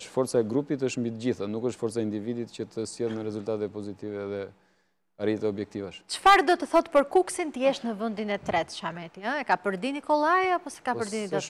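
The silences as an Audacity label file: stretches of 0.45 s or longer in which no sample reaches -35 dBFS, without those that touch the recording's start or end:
4.470000	5.200000	silence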